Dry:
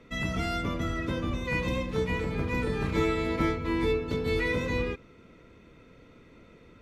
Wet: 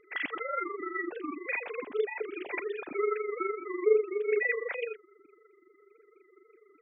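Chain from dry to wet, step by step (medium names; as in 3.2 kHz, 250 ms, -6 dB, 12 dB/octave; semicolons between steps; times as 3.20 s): formants replaced by sine waves; AM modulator 24 Hz, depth 55%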